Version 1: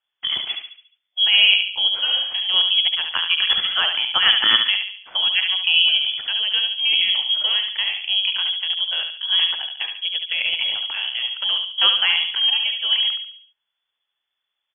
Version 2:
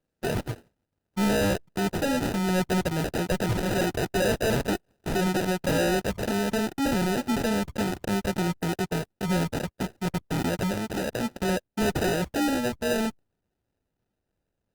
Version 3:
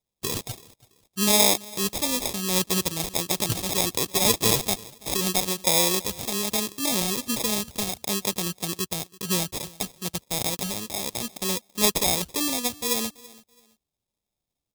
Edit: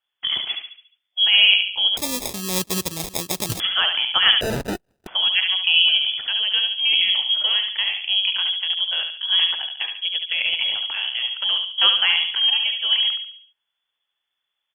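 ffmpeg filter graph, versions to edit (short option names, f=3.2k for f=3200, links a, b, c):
-filter_complex "[0:a]asplit=3[a][b][c];[a]atrim=end=1.972[d];[2:a]atrim=start=1.968:end=3.602[e];[b]atrim=start=3.598:end=4.412[f];[1:a]atrim=start=4.408:end=5.072[g];[c]atrim=start=5.068[h];[d][e]acrossfade=d=0.004:c1=hsin:c2=hsin[i];[i][f]acrossfade=d=0.004:c1=hsin:c2=hsin[j];[j][g]acrossfade=d=0.004:c1=hsin:c2=hsin[k];[k][h]acrossfade=d=0.004:c1=hsin:c2=hsin"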